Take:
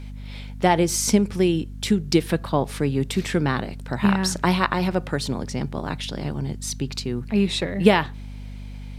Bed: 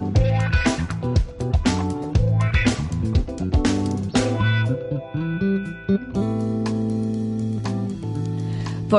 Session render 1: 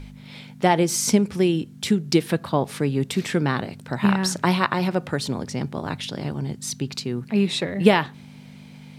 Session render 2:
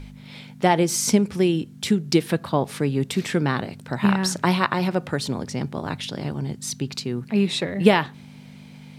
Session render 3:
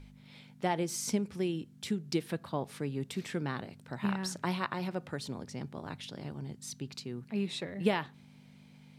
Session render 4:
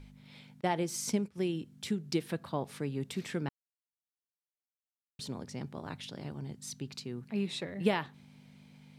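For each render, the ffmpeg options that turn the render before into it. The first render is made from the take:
ffmpeg -i in.wav -af "bandreject=frequency=50:width_type=h:width=4,bandreject=frequency=100:width_type=h:width=4" out.wav
ffmpeg -i in.wav -af anull out.wav
ffmpeg -i in.wav -af "volume=-13dB" out.wav
ffmpeg -i in.wav -filter_complex "[0:a]asettb=1/sr,asplit=3[link_01][link_02][link_03];[link_01]atrim=end=0.614[link_04];[link_02]atrim=start=0.61:end=1.38,asetpts=PTS-STARTPTS,afade=type=in:duration=0.004:curve=qsin,afade=type=out:start_time=0.766:duration=0.004:curve=qsin,agate=range=-33dB:threshold=-38dB:ratio=3:release=100:detection=peak[link_05];[link_03]atrim=start=1.376[link_06];[link_04][link_05]acrossfade=duration=0.004:curve1=hsin:curve2=qsin[link_07];[link_07][link_06]acrossfade=duration=0.004:curve1=qsin:curve2=hsin,asplit=3[link_08][link_09][link_10];[link_08]atrim=end=3.49,asetpts=PTS-STARTPTS,afade=type=out:start_time=3.486:duration=0.004:curve=hsin[link_11];[link_09]atrim=start=3.49:end=5.19,asetpts=PTS-STARTPTS,volume=0[link_12];[link_10]atrim=start=5.19,asetpts=PTS-STARTPTS,afade=type=in:duration=0.004:curve=hsin[link_13];[link_11][link_12][link_13]concat=n=3:v=0:a=1" out.wav

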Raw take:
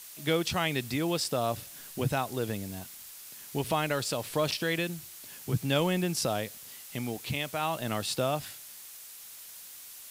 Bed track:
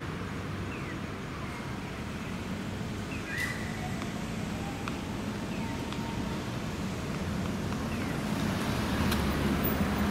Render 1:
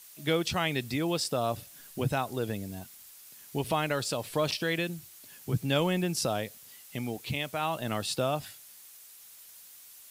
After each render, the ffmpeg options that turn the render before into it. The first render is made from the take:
ffmpeg -i in.wav -af "afftdn=noise_reduction=6:noise_floor=-47" out.wav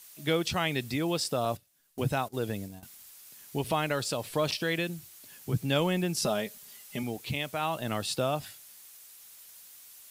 ffmpeg -i in.wav -filter_complex "[0:a]asettb=1/sr,asplit=3[link_01][link_02][link_03];[link_01]atrim=end=1.454[link_04];[link_02]atrim=start=1.45:end=2.83,asetpts=PTS-STARTPTS,afade=type=in:duration=0.004:curve=qsin,afade=type=out:start_time=1.376:duration=0.004:curve=qsin,agate=range=-19dB:threshold=-39dB:ratio=16:release=100:detection=peak[link_05];[link_03]atrim=start=2.826[link_06];[link_04][link_05]acrossfade=duration=0.004:curve1=hsin:curve2=qsin[link_07];[link_07][link_06]acrossfade=duration=0.004:curve1=qsin:curve2=hsin,asettb=1/sr,asplit=3[link_08][link_09][link_10];[link_08]atrim=end=6.224[link_11];[link_09]atrim=start=6.22:end=7.03,asetpts=PTS-STARTPTS,afade=type=in:duration=0.004:curve=qsin,afade=type=out:start_time=0.806:duration=0.004:curve=qsin,aecho=1:1:4.9:0.65,atrim=end_sample=35721[link_12];[link_10]atrim=start=7.026[link_13];[link_11][link_12]acrossfade=duration=0.004:curve1=hsin:curve2=qsin[link_14];[link_14][link_13]acrossfade=duration=0.004:curve1=qsin:curve2=hsin" out.wav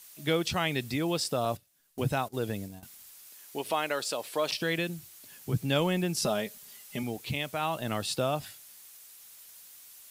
ffmpeg -i in.wav -filter_complex "[0:a]asettb=1/sr,asplit=3[link_01][link_02][link_03];[link_01]atrim=end=3.274[link_04];[link_02]atrim=start=3.27:end=4.52,asetpts=PTS-STARTPTS,afade=type=in:duration=0.004:curve=qsin,afade=type=out:start_time=1.246:duration=0.004:curve=qsin,highpass=350[link_05];[link_03]atrim=start=4.516[link_06];[link_04][link_05]acrossfade=duration=0.004:curve1=hsin:curve2=qsin[link_07];[link_07][link_06]acrossfade=duration=0.004:curve1=qsin:curve2=hsin" out.wav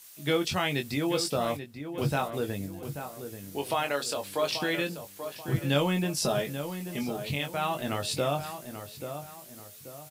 ffmpeg -i in.wav -filter_complex "[0:a]asplit=2[link_01][link_02];[link_02]adelay=21,volume=-6dB[link_03];[link_01][link_03]amix=inputs=2:normalize=0,asplit=2[link_04][link_05];[link_05]adelay=835,lowpass=frequency=2000:poles=1,volume=-9dB,asplit=2[link_06][link_07];[link_07]adelay=835,lowpass=frequency=2000:poles=1,volume=0.4,asplit=2[link_08][link_09];[link_09]adelay=835,lowpass=frequency=2000:poles=1,volume=0.4,asplit=2[link_10][link_11];[link_11]adelay=835,lowpass=frequency=2000:poles=1,volume=0.4[link_12];[link_06][link_08][link_10][link_12]amix=inputs=4:normalize=0[link_13];[link_04][link_13]amix=inputs=2:normalize=0" out.wav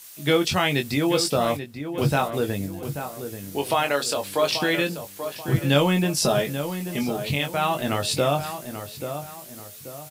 ffmpeg -i in.wav -af "volume=6.5dB" out.wav

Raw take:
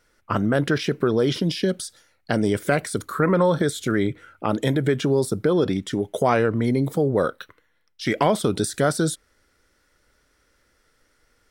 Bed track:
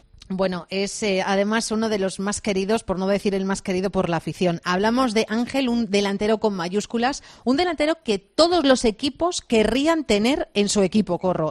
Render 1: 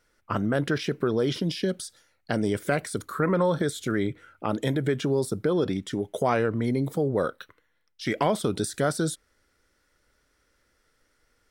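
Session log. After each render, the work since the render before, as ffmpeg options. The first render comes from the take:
ffmpeg -i in.wav -af "volume=-4.5dB" out.wav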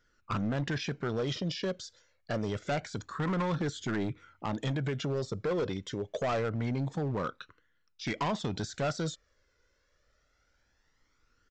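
ffmpeg -i in.wav -af "flanger=delay=0.6:depth=1.4:regen=24:speed=0.26:shape=triangular,aresample=16000,asoftclip=type=hard:threshold=-27dB,aresample=44100" out.wav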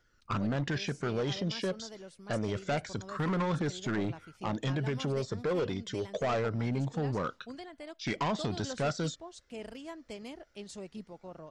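ffmpeg -i in.wav -i bed.wav -filter_complex "[1:a]volume=-25dB[link_01];[0:a][link_01]amix=inputs=2:normalize=0" out.wav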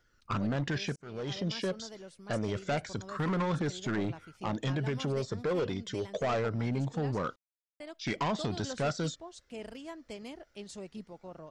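ffmpeg -i in.wav -filter_complex "[0:a]asplit=4[link_01][link_02][link_03][link_04];[link_01]atrim=end=0.96,asetpts=PTS-STARTPTS,afade=type=out:start_time=0.956:duration=0.004:curve=hsin[link_05];[link_02]atrim=start=0.96:end=7.36,asetpts=PTS-STARTPTS,afade=type=in:duration=0.49,afade=type=out:start_time=6.396:duration=0.004:curve=hsin[link_06];[link_03]atrim=start=7.36:end=7.8,asetpts=PTS-STARTPTS,volume=0[link_07];[link_04]atrim=start=7.8,asetpts=PTS-STARTPTS,afade=type=in:duration=0.004:curve=hsin[link_08];[link_05][link_06][link_07][link_08]concat=n=4:v=0:a=1" out.wav

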